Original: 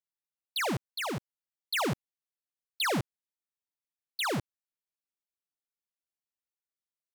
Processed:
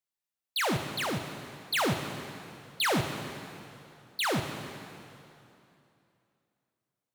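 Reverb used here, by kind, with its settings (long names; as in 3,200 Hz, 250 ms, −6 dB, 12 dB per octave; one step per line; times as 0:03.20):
dense smooth reverb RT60 2.8 s, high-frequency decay 0.9×, DRR 5.5 dB
level +1.5 dB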